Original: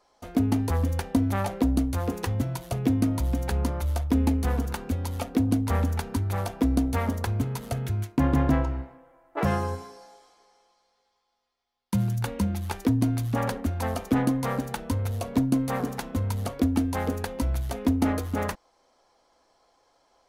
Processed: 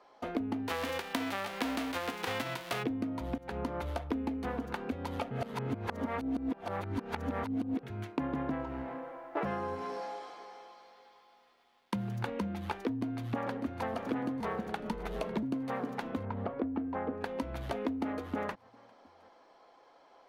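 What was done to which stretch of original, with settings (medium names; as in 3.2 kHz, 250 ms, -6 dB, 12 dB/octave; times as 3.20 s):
0.67–2.82 s: formants flattened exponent 0.3
3.38–3.80 s: fade in, from -15 dB
5.31–7.83 s: reverse
8.59–12.30 s: companding laws mixed up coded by mu
12.82–13.88 s: echo throw 600 ms, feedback 70%, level -13 dB
14.40–15.43 s: frequency shift -51 Hz
16.25–17.21 s: low-pass 1.6 kHz
whole clip: three-band isolator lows -16 dB, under 170 Hz, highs -18 dB, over 3.7 kHz; compression 6:1, threshold -38 dBFS; trim +5.5 dB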